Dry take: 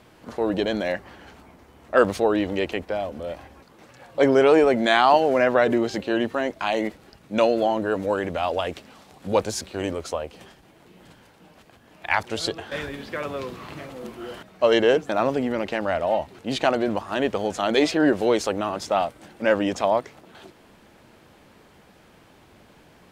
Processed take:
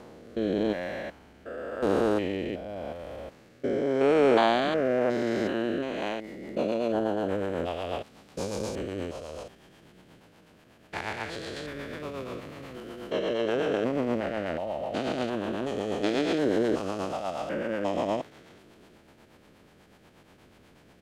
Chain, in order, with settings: stepped spectrum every 0.4 s; rotary speaker horn 0.8 Hz, later 7.5 Hz, at 6.32; tempo 1.1×

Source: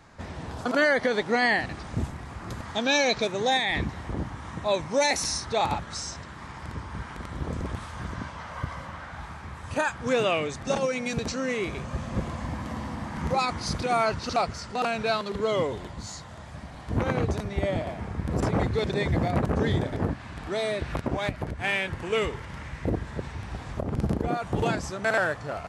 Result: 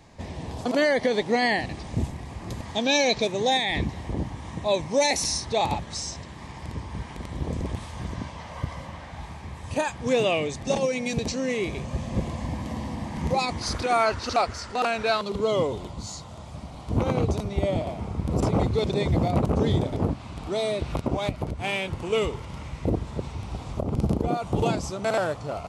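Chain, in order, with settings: bell 1400 Hz -15 dB 0.49 oct, from 13.62 s 160 Hz, from 15.21 s 1700 Hz; gain +2.5 dB

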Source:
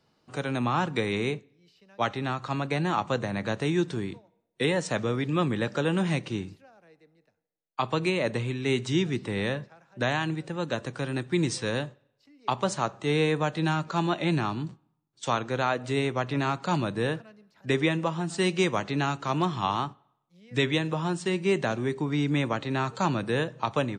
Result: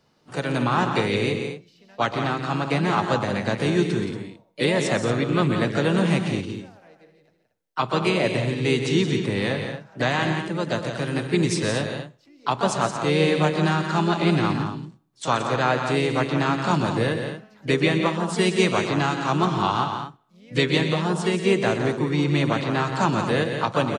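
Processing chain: harmoniser +3 st -8 dB; loudspeakers at several distances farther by 43 m -11 dB, 59 m -8 dB, 79 m -11 dB; gain +3.5 dB

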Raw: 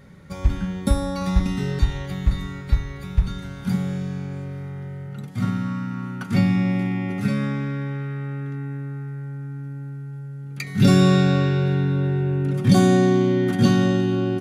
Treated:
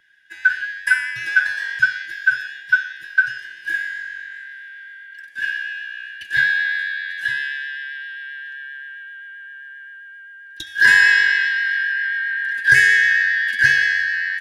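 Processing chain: four-band scrambler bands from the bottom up 4123; vibrato 7.6 Hz 21 cents; three-band expander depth 40%

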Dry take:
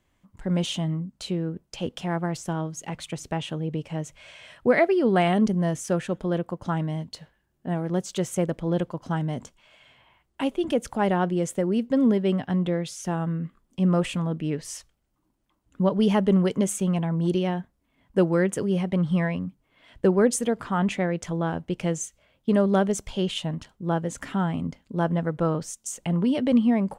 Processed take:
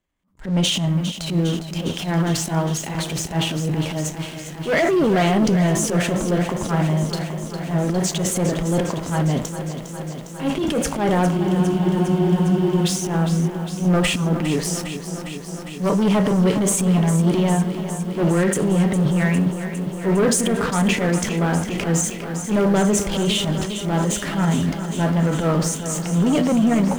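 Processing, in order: on a send at -7 dB: reverb RT60 0.45 s, pre-delay 3 ms; on the sum: sample leveller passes 3; transient shaper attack -11 dB, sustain +7 dB; in parallel at -2 dB: limiter -10.5 dBFS, peak gain reduction 6 dB; on the sum: spectral freeze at 11.33, 1.52 s; lo-fi delay 0.406 s, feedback 80%, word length 6-bit, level -10.5 dB; gain -8.5 dB

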